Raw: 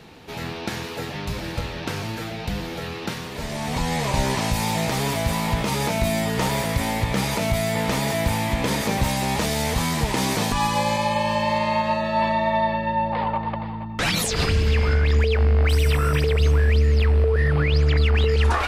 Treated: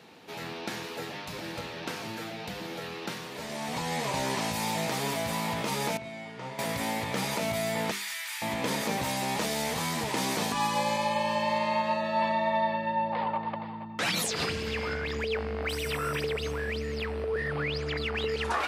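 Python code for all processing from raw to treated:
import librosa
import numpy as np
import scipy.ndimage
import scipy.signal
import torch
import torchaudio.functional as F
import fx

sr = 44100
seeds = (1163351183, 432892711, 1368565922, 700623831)

y = fx.chain(x, sr, fx.lowpass(hz=6700.0, slope=12),
    fx.bass_treble(bass_db=0, treble_db=-7),
    fx.comb_fb(f0_hz=130.0, decay_s=0.59, harmonics='all', damping=0.0, mix_pct=80), at=(5.97, 6.59))
y = fx.chain(y, sr, fx.highpass(hz=1400.0, slope=24),
    fx.transformer_sat(knee_hz=1300.0), at=(7.91, 8.42))
y = scipy.signal.sosfilt(scipy.signal.butter(2, 180.0, 'highpass', fs=sr, output='sos'), y)
y = fx.hum_notches(y, sr, base_hz=50, count=9)
y = y * librosa.db_to_amplitude(-5.5)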